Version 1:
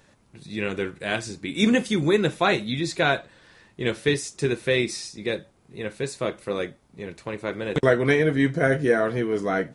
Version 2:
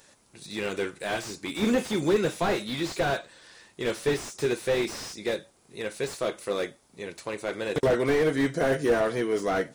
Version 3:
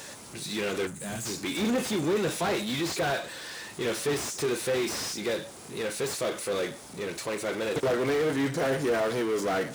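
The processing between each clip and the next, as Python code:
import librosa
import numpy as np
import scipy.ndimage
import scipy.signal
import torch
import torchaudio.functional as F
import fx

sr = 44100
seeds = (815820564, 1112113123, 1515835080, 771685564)

y1 = fx.bass_treble(x, sr, bass_db=-9, treble_db=10)
y1 = fx.slew_limit(y1, sr, full_power_hz=67.0)
y2 = fx.spec_box(y1, sr, start_s=0.87, length_s=0.39, low_hz=270.0, high_hz=6100.0, gain_db=-15)
y2 = fx.power_curve(y2, sr, exponent=0.5)
y2 = scipy.signal.sosfilt(scipy.signal.butter(2, 70.0, 'highpass', fs=sr, output='sos'), y2)
y2 = y2 * librosa.db_to_amplitude(-7.5)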